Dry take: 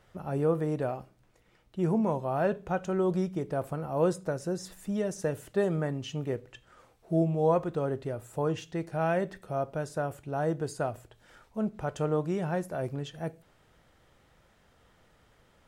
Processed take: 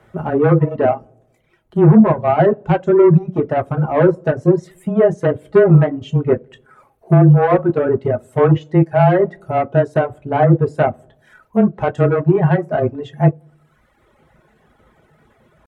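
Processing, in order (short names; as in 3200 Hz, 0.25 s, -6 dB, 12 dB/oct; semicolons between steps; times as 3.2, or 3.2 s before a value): bell 4600 Hz -11.5 dB 1.5 oct; dark delay 94 ms, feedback 56%, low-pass 560 Hz, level -15 dB; soft clip -26.5 dBFS, distortion -12 dB; treble ducked by the level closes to 490 Hz, closed at -24 dBFS; reverb RT60 0.30 s, pre-delay 5 ms, DRR 4 dB; reverb removal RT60 1.3 s; high shelf 9000 Hz -7.5 dB; pitch shift +1 st; HPF 79 Hz; frequency shift -19 Hz; maximiser +21 dB; upward expander 1.5:1, over -23 dBFS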